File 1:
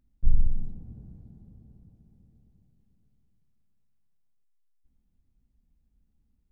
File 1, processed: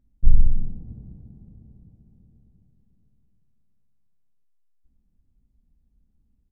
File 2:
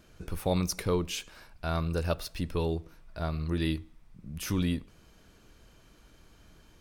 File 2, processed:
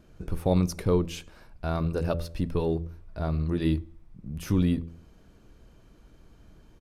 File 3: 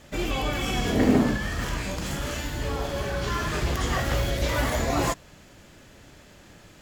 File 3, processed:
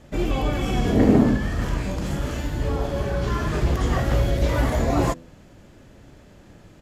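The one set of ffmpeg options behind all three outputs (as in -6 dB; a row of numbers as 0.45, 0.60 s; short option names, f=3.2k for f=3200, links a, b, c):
-filter_complex "[0:a]asplit=2[a][b];[b]aeval=exprs='sgn(val(0))*max(abs(val(0))-0.0075,0)':c=same,volume=-12dB[c];[a][c]amix=inputs=2:normalize=0,tiltshelf=f=970:g=5.5,bandreject=f=83.69:t=h:w=4,bandreject=f=167.38:t=h:w=4,bandreject=f=251.07:t=h:w=4,bandreject=f=334.76:t=h:w=4,bandreject=f=418.45:t=h:w=4,bandreject=f=502.14:t=h:w=4,bandreject=f=585.83:t=h:w=4,aresample=32000,aresample=44100,volume=-1dB"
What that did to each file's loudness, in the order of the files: +6.5, +4.0, +3.5 LU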